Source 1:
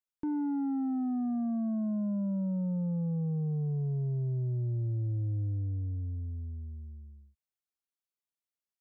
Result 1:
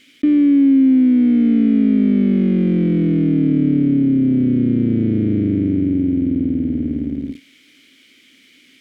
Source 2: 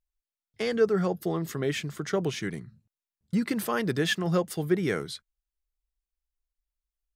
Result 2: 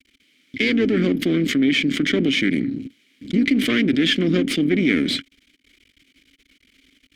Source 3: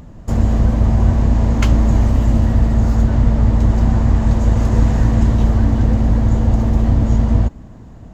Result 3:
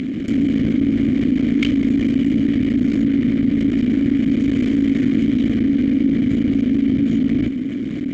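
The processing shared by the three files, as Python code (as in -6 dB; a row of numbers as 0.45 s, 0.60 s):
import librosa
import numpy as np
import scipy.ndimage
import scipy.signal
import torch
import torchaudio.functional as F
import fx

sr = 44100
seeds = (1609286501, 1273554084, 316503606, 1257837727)

y = fx.octave_divider(x, sr, octaves=2, level_db=-6.0)
y = fx.low_shelf(y, sr, hz=95.0, db=-7.0)
y = np.maximum(y, 0.0)
y = fx.vowel_filter(y, sr, vowel='i')
y = fx.env_flatten(y, sr, amount_pct=70)
y = librosa.util.normalize(y) * 10.0 ** (-6 / 20.0)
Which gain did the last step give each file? +27.0 dB, +19.5 dB, +13.0 dB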